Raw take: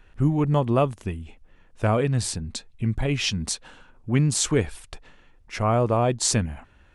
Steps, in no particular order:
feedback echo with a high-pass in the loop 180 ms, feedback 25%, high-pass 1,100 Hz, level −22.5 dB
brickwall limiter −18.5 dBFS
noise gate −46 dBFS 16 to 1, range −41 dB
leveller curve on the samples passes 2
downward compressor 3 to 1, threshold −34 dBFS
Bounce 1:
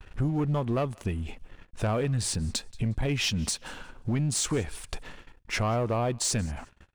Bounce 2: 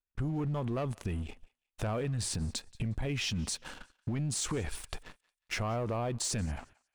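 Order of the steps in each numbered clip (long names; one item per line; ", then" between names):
downward compressor, then brickwall limiter, then leveller curve on the samples, then feedback echo with a high-pass in the loop, then noise gate
leveller curve on the samples, then brickwall limiter, then noise gate, then downward compressor, then feedback echo with a high-pass in the loop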